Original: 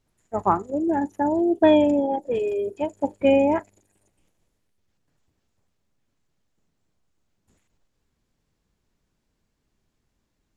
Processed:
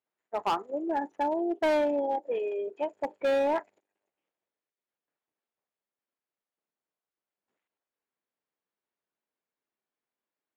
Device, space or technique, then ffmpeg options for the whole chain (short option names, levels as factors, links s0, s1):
walkie-talkie: -af "highpass=470,lowpass=2800,asoftclip=type=hard:threshold=0.1,agate=range=0.355:threshold=0.00251:ratio=16:detection=peak,volume=0.75"